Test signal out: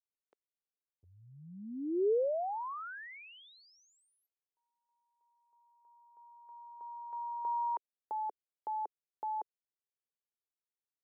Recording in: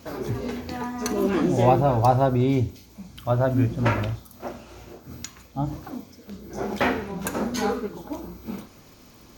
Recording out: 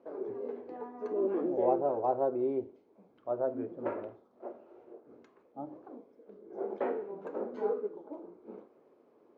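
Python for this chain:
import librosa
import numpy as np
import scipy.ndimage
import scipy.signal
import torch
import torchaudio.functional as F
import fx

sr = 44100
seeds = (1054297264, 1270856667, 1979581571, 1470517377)

y = fx.ladder_bandpass(x, sr, hz=490.0, resonance_pct=50)
y = F.gain(torch.from_numpy(y), 1.5).numpy()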